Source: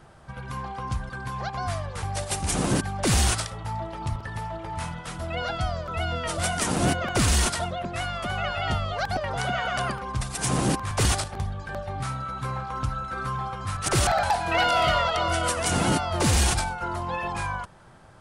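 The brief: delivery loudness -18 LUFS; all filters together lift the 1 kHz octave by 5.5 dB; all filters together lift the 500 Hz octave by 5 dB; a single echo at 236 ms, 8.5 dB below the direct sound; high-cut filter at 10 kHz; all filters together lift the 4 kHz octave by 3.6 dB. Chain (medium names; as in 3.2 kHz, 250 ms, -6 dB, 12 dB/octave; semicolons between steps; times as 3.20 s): low-pass 10 kHz; peaking EQ 500 Hz +4.5 dB; peaking EQ 1 kHz +5.5 dB; peaking EQ 4 kHz +4.5 dB; delay 236 ms -8.5 dB; trim +5 dB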